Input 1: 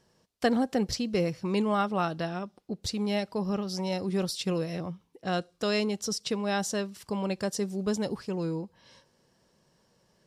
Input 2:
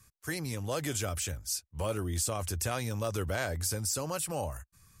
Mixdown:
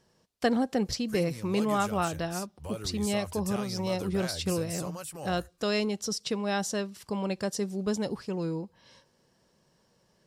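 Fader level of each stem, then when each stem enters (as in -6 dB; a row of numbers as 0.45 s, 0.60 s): -0.5 dB, -6.5 dB; 0.00 s, 0.85 s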